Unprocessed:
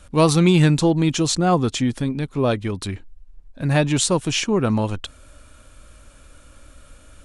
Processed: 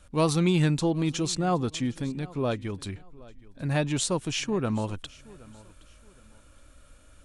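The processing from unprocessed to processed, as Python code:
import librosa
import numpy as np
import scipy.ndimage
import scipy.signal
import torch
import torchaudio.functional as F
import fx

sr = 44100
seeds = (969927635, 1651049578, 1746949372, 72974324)

y = fx.echo_feedback(x, sr, ms=770, feedback_pct=30, wet_db=-22.0)
y = y * librosa.db_to_amplitude(-8.0)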